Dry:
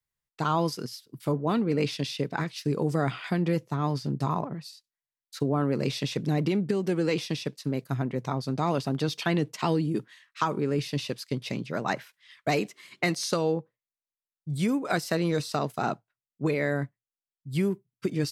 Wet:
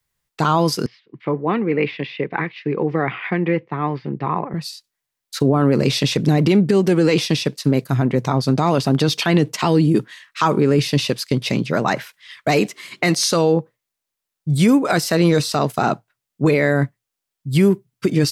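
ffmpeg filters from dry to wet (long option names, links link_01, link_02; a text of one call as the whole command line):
ffmpeg -i in.wav -filter_complex "[0:a]asettb=1/sr,asplit=3[link_01][link_02][link_03];[link_01]atrim=end=0.864[link_04];[link_02]atrim=start=0.86:end=4.54,asetpts=PTS-STARTPTS,afade=type=in:duration=0.004:curve=qsin,afade=type=out:start_time=3.676:duration=0.004:curve=qsin,highpass=260,equalizer=frequency=260:width_type=q:width=4:gain=-9,equalizer=frequency=430:width_type=q:width=4:gain=-3,equalizer=frequency=630:width_type=q:width=4:gain=-10,equalizer=frequency=940:width_type=q:width=4:gain=-4,equalizer=frequency=1400:width_type=q:width=4:gain=-8,equalizer=frequency=2100:width_type=q:width=4:gain=4,lowpass=frequency=2400:width=0.5412,lowpass=frequency=2400:width=1.3066[link_05];[link_03]atrim=start=4.536[link_06];[link_04][link_05]acrossfade=duration=0.004:curve1=hsin:curve2=qsin[link_07];[link_07][link_06]acrossfade=duration=0.004:curve1=qsin:curve2=hsin,alimiter=level_in=18dB:limit=-1dB:release=50:level=0:latency=1,volume=-5dB" out.wav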